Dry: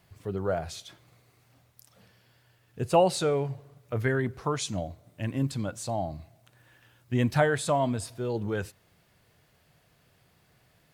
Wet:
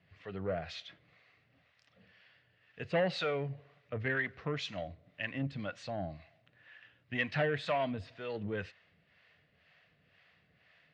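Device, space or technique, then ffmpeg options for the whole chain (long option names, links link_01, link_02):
guitar amplifier with harmonic tremolo: -filter_complex "[0:a]acrossover=split=540[link_01][link_02];[link_01]aeval=exprs='val(0)*(1-0.7/2+0.7/2*cos(2*PI*2*n/s))':channel_layout=same[link_03];[link_02]aeval=exprs='val(0)*(1-0.7/2-0.7/2*cos(2*PI*2*n/s))':channel_layout=same[link_04];[link_03][link_04]amix=inputs=2:normalize=0,asoftclip=type=tanh:threshold=-22.5dB,highpass=89,equalizer=frequency=120:width_type=q:width=4:gain=-9,equalizer=frequency=230:width_type=q:width=4:gain=-4,equalizer=frequency=360:width_type=q:width=4:gain=-9,equalizer=frequency=900:width_type=q:width=4:gain=-7,equalizer=frequency=1900:width_type=q:width=4:gain=9,equalizer=frequency=2700:width_type=q:width=4:gain=6,lowpass=frequency=4200:width=0.5412,lowpass=frequency=4200:width=1.3066"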